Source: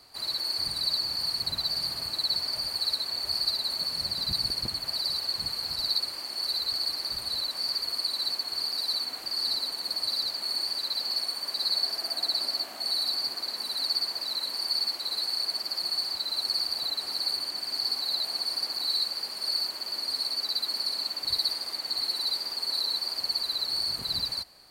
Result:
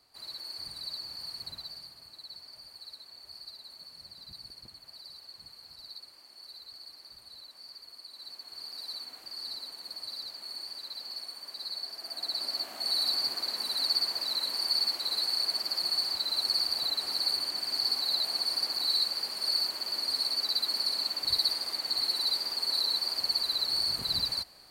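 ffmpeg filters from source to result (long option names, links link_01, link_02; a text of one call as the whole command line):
ffmpeg -i in.wav -af "volume=7.5dB,afade=type=out:start_time=1.47:duration=0.45:silence=0.421697,afade=type=in:start_time=8.09:duration=0.76:silence=0.398107,afade=type=in:start_time=11.96:duration=1.1:silence=0.298538" out.wav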